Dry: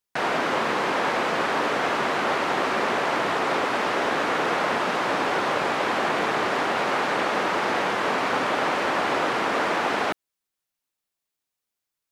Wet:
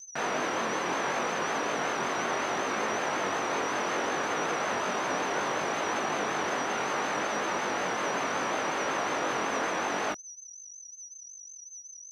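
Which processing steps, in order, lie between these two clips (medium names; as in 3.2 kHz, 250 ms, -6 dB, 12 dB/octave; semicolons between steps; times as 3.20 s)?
in parallel at 0 dB: peak limiter -19.5 dBFS, peak gain reduction 8 dB; on the sum: whistle 6 kHz -33 dBFS; chorus 0.68 Hz, delay 18.5 ms, depth 4 ms; vibrato 5.4 Hz 64 cents; trim -7.5 dB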